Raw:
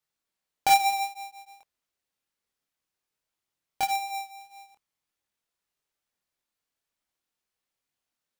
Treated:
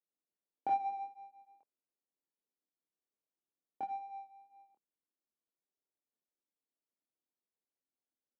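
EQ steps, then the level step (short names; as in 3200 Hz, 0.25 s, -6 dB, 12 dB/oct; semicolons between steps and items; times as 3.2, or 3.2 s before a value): ladder band-pass 350 Hz, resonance 25%; +5.5 dB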